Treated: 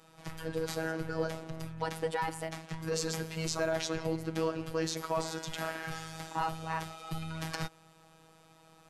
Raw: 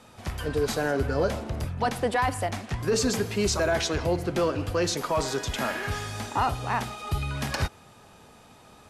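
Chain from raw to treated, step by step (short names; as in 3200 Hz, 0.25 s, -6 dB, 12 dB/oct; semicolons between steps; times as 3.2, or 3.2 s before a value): robotiser 161 Hz; gain -5.5 dB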